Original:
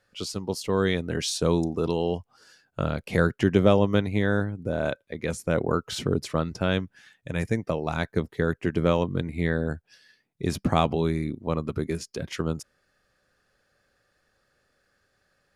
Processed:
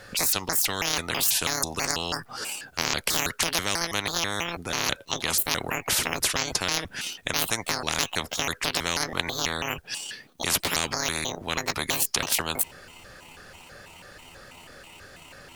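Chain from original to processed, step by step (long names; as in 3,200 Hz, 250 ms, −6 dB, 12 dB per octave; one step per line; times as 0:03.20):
pitch shifter gated in a rhythm +9 semitones, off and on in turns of 163 ms
every bin compressed towards the loudest bin 10 to 1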